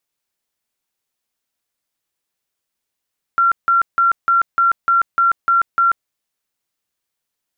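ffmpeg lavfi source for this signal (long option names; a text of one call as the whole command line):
ffmpeg -f lavfi -i "aevalsrc='0.299*sin(2*PI*1370*mod(t,0.3))*lt(mod(t,0.3),188/1370)':duration=2.7:sample_rate=44100" out.wav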